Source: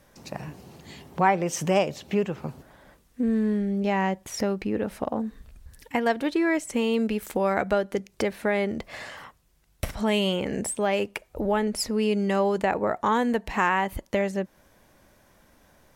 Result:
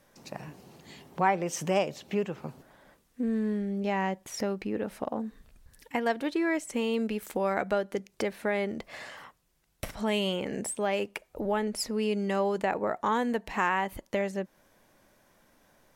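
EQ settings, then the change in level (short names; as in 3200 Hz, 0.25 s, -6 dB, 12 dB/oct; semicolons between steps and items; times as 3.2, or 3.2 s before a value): bell 60 Hz -9 dB 1.7 oct; -4.0 dB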